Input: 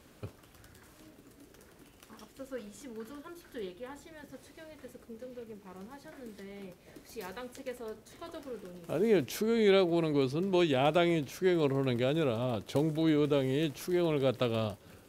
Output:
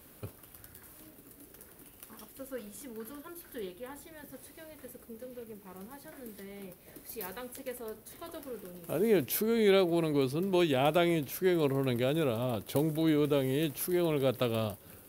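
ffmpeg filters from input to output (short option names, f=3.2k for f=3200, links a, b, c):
-af "aexciter=amount=3.2:drive=8.4:freq=9.6k"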